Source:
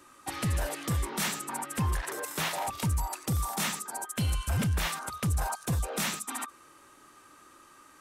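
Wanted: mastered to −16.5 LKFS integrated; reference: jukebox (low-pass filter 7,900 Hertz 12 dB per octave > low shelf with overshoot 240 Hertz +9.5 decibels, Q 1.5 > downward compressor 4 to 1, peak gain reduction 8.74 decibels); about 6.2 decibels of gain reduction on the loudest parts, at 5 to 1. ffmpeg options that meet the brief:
ffmpeg -i in.wav -af "acompressor=threshold=-32dB:ratio=5,lowpass=7900,lowshelf=frequency=240:width_type=q:width=1.5:gain=9.5,acompressor=threshold=-30dB:ratio=4,volume=19dB" out.wav

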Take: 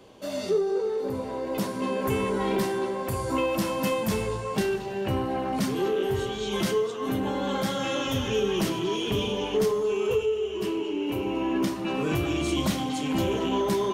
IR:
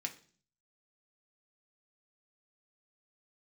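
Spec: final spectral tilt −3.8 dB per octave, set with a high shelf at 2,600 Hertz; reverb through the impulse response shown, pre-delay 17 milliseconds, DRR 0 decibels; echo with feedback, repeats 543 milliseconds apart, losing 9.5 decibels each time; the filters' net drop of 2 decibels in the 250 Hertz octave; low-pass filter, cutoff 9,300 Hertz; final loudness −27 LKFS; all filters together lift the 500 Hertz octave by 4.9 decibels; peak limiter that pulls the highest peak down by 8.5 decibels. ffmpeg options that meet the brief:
-filter_complex "[0:a]lowpass=9300,equalizer=frequency=250:width_type=o:gain=-6.5,equalizer=frequency=500:width_type=o:gain=8,highshelf=frequency=2600:gain=7.5,alimiter=limit=-19.5dB:level=0:latency=1,aecho=1:1:543|1086|1629|2172:0.335|0.111|0.0365|0.012,asplit=2[link_01][link_02];[1:a]atrim=start_sample=2205,adelay=17[link_03];[link_02][link_03]afir=irnorm=-1:irlink=0,volume=0dB[link_04];[link_01][link_04]amix=inputs=2:normalize=0,volume=-2.5dB"

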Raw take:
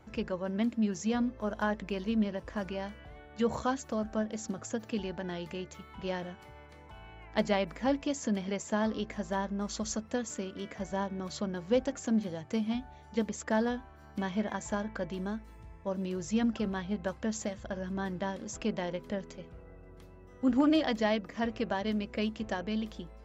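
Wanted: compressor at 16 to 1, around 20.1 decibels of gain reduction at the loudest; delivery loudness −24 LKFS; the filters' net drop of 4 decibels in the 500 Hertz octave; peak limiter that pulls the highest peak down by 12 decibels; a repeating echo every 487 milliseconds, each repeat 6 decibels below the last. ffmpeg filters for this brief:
ffmpeg -i in.wav -af "equalizer=frequency=500:width_type=o:gain=-5,acompressor=threshold=-44dB:ratio=16,alimiter=level_in=16dB:limit=-24dB:level=0:latency=1,volume=-16dB,aecho=1:1:487|974|1461|1948|2435|2922:0.501|0.251|0.125|0.0626|0.0313|0.0157,volume=25dB" out.wav

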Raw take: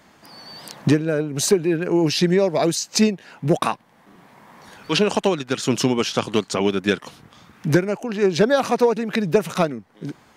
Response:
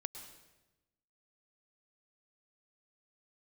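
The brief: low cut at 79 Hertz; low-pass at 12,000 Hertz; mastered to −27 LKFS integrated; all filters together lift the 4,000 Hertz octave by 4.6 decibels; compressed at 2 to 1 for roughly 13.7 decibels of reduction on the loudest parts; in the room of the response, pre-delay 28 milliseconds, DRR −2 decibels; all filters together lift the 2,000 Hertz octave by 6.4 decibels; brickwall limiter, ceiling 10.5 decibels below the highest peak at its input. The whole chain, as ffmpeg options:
-filter_complex "[0:a]highpass=79,lowpass=12000,equalizer=frequency=2000:width_type=o:gain=7.5,equalizer=frequency=4000:width_type=o:gain=3.5,acompressor=threshold=-37dB:ratio=2,alimiter=limit=-22.5dB:level=0:latency=1,asplit=2[link_01][link_02];[1:a]atrim=start_sample=2205,adelay=28[link_03];[link_02][link_03]afir=irnorm=-1:irlink=0,volume=4dB[link_04];[link_01][link_04]amix=inputs=2:normalize=0,volume=3dB"

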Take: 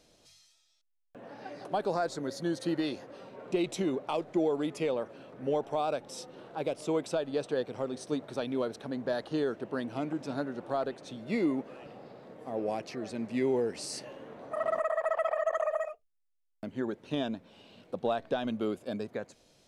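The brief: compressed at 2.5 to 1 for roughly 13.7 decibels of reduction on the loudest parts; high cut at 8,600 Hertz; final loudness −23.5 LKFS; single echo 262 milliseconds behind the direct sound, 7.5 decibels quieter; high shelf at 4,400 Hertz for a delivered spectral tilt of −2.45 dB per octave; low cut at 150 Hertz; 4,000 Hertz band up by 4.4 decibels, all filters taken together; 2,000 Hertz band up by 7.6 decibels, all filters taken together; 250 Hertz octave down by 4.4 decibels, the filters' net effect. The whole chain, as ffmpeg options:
ffmpeg -i in.wav -af "highpass=150,lowpass=8600,equalizer=frequency=250:width_type=o:gain=-5.5,equalizer=frequency=2000:width_type=o:gain=9,equalizer=frequency=4000:width_type=o:gain=5.5,highshelf=frequency=4400:gain=-5.5,acompressor=threshold=-46dB:ratio=2.5,aecho=1:1:262:0.422,volume=21dB" out.wav

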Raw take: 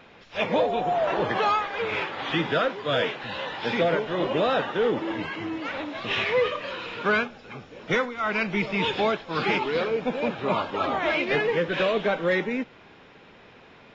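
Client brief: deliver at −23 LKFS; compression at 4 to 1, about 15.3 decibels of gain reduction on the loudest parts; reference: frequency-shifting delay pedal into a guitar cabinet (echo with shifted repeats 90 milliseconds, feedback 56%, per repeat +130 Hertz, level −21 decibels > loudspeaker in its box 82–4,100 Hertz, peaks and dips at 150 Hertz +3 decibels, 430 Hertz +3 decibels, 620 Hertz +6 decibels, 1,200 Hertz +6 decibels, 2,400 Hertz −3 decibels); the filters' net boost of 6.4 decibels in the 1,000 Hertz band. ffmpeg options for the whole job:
ffmpeg -i in.wav -filter_complex "[0:a]equalizer=frequency=1000:width_type=o:gain=4,acompressor=threshold=-37dB:ratio=4,asplit=5[link_01][link_02][link_03][link_04][link_05];[link_02]adelay=90,afreqshift=130,volume=-21dB[link_06];[link_03]adelay=180,afreqshift=260,volume=-26dB[link_07];[link_04]adelay=270,afreqshift=390,volume=-31.1dB[link_08];[link_05]adelay=360,afreqshift=520,volume=-36.1dB[link_09];[link_01][link_06][link_07][link_08][link_09]amix=inputs=5:normalize=0,highpass=82,equalizer=frequency=150:width_type=q:width=4:gain=3,equalizer=frequency=430:width_type=q:width=4:gain=3,equalizer=frequency=620:width_type=q:width=4:gain=6,equalizer=frequency=1200:width_type=q:width=4:gain=6,equalizer=frequency=2400:width_type=q:width=4:gain=-3,lowpass=frequency=4100:width=0.5412,lowpass=frequency=4100:width=1.3066,volume=12dB" out.wav

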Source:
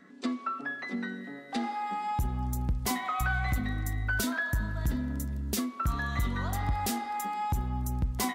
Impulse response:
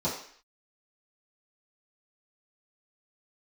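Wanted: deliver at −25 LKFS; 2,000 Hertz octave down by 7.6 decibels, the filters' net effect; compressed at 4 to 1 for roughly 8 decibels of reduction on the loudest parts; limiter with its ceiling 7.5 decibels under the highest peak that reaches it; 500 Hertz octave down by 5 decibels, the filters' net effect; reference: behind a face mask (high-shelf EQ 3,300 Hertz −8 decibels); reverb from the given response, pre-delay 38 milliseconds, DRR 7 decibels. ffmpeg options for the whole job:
-filter_complex "[0:a]equalizer=frequency=500:width_type=o:gain=-6.5,equalizer=frequency=2000:width_type=o:gain=-8,acompressor=threshold=-34dB:ratio=4,alimiter=level_in=7dB:limit=-24dB:level=0:latency=1,volume=-7dB,asplit=2[link_01][link_02];[1:a]atrim=start_sample=2205,adelay=38[link_03];[link_02][link_03]afir=irnorm=-1:irlink=0,volume=-16dB[link_04];[link_01][link_04]amix=inputs=2:normalize=0,highshelf=frequency=3300:gain=-8,volume=13.5dB"

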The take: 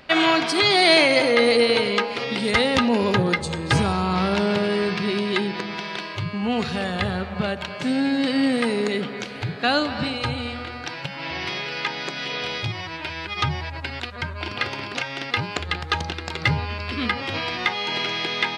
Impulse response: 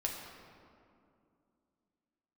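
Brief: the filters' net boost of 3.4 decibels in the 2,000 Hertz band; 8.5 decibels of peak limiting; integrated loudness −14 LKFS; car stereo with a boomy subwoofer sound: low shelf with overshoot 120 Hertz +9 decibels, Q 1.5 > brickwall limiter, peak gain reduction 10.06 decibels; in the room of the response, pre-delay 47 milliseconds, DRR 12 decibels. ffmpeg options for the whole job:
-filter_complex "[0:a]equalizer=frequency=2000:width_type=o:gain=4,alimiter=limit=-12dB:level=0:latency=1,asplit=2[link_01][link_02];[1:a]atrim=start_sample=2205,adelay=47[link_03];[link_02][link_03]afir=irnorm=-1:irlink=0,volume=-14.5dB[link_04];[link_01][link_04]amix=inputs=2:normalize=0,lowshelf=frequency=120:width_type=q:width=1.5:gain=9,volume=13dB,alimiter=limit=-5.5dB:level=0:latency=1"

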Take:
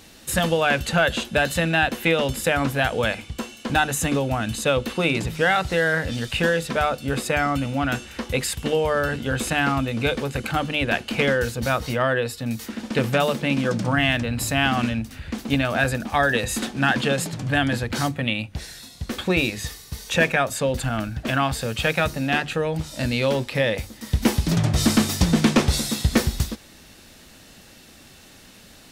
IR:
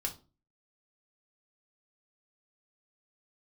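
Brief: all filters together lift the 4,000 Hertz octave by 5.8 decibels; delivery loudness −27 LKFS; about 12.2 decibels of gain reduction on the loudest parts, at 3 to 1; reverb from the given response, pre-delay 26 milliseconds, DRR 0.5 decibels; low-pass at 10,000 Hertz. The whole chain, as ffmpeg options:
-filter_complex "[0:a]lowpass=10000,equalizer=frequency=4000:width_type=o:gain=7.5,acompressor=threshold=-30dB:ratio=3,asplit=2[link_01][link_02];[1:a]atrim=start_sample=2205,adelay=26[link_03];[link_02][link_03]afir=irnorm=-1:irlink=0,volume=-2dB[link_04];[link_01][link_04]amix=inputs=2:normalize=0,volume=0.5dB"

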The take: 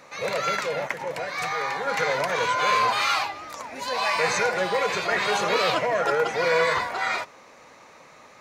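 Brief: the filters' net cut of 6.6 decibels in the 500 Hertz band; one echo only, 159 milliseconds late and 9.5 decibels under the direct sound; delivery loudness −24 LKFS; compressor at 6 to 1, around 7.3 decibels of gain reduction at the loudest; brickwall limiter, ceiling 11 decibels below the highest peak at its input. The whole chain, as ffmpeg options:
ffmpeg -i in.wav -af "equalizer=frequency=500:width_type=o:gain=-7.5,acompressor=threshold=-27dB:ratio=6,alimiter=limit=-23.5dB:level=0:latency=1,aecho=1:1:159:0.335,volume=8dB" out.wav

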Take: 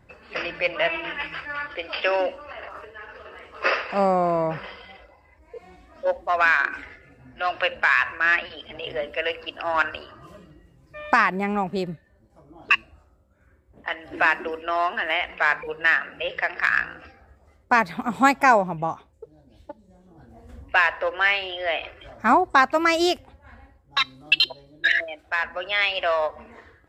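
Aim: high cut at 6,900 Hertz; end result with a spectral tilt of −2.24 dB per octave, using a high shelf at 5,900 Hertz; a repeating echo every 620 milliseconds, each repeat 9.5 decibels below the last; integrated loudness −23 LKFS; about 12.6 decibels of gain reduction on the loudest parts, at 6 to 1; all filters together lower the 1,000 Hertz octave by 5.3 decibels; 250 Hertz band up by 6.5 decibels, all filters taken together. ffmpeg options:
ffmpeg -i in.wav -af "lowpass=6900,equalizer=frequency=250:width_type=o:gain=9,equalizer=frequency=1000:width_type=o:gain=-8,highshelf=frequency=5900:gain=7.5,acompressor=threshold=-25dB:ratio=6,aecho=1:1:620|1240|1860|2480:0.335|0.111|0.0365|0.012,volume=7.5dB" out.wav

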